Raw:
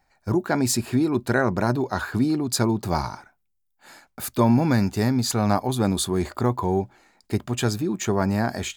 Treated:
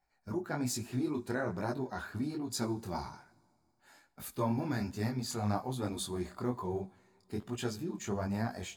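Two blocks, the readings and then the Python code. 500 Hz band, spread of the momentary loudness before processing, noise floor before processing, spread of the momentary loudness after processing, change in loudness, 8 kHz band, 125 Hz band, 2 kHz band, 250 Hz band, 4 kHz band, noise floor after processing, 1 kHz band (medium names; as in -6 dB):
-12.5 dB, 6 LU, -71 dBFS, 7 LU, -13.0 dB, -13.0 dB, -13.0 dB, -13.5 dB, -13.0 dB, -12.5 dB, -74 dBFS, -13.0 dB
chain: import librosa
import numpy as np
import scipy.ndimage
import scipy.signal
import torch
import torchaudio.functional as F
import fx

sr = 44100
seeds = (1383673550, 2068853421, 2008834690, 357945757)

y = fx.spec_quant(x, sr, step_db=15)
y = fx.rev_double_slope(y, sr, seeds[0], early_s=0.6, late_s=3.1, knee_db=-17, drr_db=16.5)
y = fx.detune_double(y, sr, cents=41)
y = y * librosa.db_to_amplitude(-9.0)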